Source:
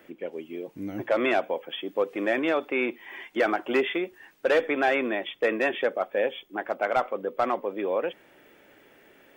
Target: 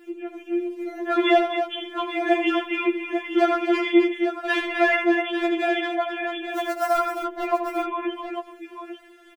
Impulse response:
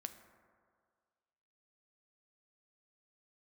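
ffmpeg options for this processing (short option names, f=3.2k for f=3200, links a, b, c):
-filter_complex "[0:a]asettb=1/sr,asplit=3[a][b][c];[a]atrim=end=6.474[d];[b]atrim=start=6.47:end=6.97,asetpts=PTS-STARTPTS,afade=t=in:d=0.004:c=qsin,afade=t=out:st=0.496:d=0.004:c=qsin,acrusher=bits=4:mode=log:mix=0:aa=0.000001[e];[c]atrim=start=6.966[f];[d][e]acrossfade=d=0.004:c1=hsin:c2=qsin[g];[g][f]acrossfade=d=0.004:c1=qsin:c2=hsin,aecho=1:1:79|136|261|847:0.376|0.15|0.422|0.335,afftfilt=real='re*4*eq(mod(b,16),0)':imag='im*4*eq(mod(b,16),0)':win_size=2048:overlap=0.75,volume=5.5dB"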